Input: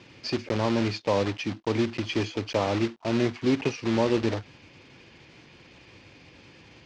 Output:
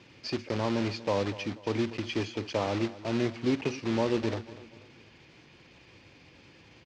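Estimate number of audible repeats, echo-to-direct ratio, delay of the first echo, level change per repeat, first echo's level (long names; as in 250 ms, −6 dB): 3, −15.5 dB, 243 ms, −8.0 dB, −16.5 dB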